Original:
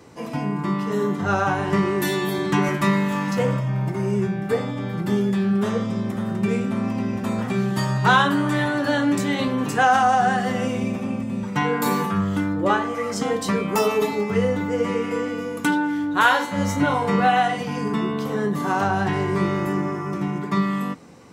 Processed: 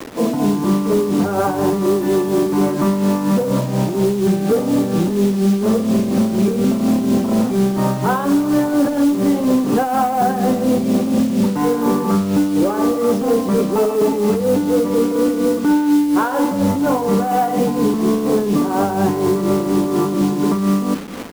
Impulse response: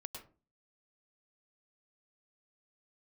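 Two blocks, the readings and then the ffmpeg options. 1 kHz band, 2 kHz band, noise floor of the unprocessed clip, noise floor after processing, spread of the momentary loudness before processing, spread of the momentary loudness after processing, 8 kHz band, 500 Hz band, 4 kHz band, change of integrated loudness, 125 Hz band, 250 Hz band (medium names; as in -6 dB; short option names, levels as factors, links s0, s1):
+0.5 dB, -7.0 dB, -30 dBFS, -21 dBFS, 8 LU, 2 LU, +6.0 dB, +7.0 dB, -1.0 dB, +5.5 dB, +2.5 dB, +8.0 dB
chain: -filter_complex "[0:a]highshelf=f=4400:g=-9.5,acompressor=threshold=0.0794:ratio=2.5,equalizer=f=125:t=o:w=1:g=-9,equalizer=f=250:t=o:w=1:g=8,equalizer=f=500:t=o:w=1:g=4,equalizer=f=2000:t=o:w=1:g=-11,equalizer=f=4000:t=o:w=1:g=-10,equalizer=f=8000:t=o:w=1:g=-12,asplit=2[s0][s1];[s1]adelay=303,lowpass=f=2000:p=1,volume=0.0891,asplit=2[s2][s3];[s3]adelay=303,lowpass=f=2000:p=1,volume=0.35,asplit=2[s4][s5];[s5]adelay=303,lowpass=f=2000:p=1,volume=0.35[s6];[s0][s2][s4][s6]amix=inputs=4:normalize=0,aeval=exprs='0.355*(cos(1*acos(clip(val(0)/0.355,-1,1)))-cos(1*PI/2))+0.0126*(cos(5*acos(clip(val(0)/0.355,-1,1)))-cos(5*PI/2))':c=same,acontrast=33,alimiter=limit=0.178:level=0:latency=1:release=12,acrusher=bits=5:mix=0:aa=0.000001,tremolo=f=4.2:d=0.52,volume=2.11"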